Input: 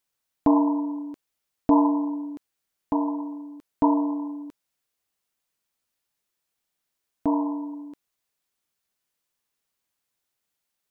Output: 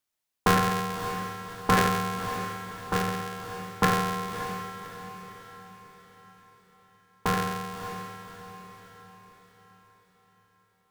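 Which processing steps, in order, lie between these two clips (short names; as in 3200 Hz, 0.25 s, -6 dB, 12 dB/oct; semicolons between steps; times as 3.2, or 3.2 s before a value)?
cycle switcher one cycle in 2, inverted; ring modulator 620 Hz; diffused feedback echo 0.585 s, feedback 47%, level -10 dB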